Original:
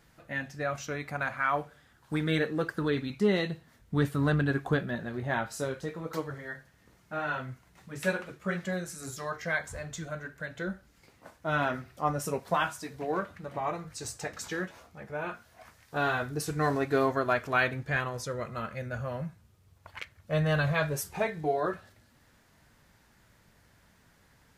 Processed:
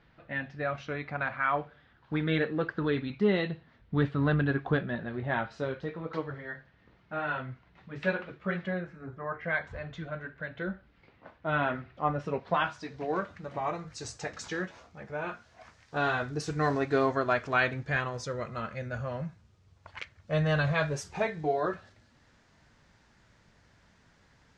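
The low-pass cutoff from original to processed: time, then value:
low-pass 24 dB/octave
8.61 s 3.8 kHz
9.18 s 1.5 kHz
9.58 s 3.5 kHz
12.27 s 3.5 kHz
13.25 s 6.8 kHz

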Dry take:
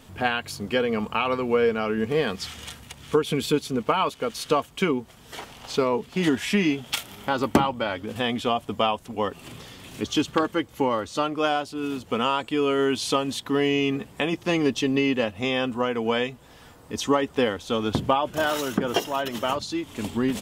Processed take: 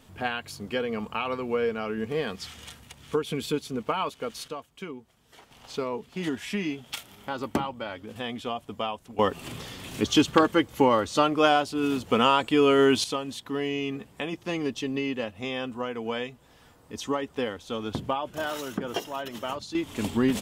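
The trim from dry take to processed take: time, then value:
-5.5 dB
from 4.48 s -15 dB
from 5.51 s -8 dB
from 9.19 s +3 dB
from 13.04 s -7 dB
from 19.75 s +1 dB

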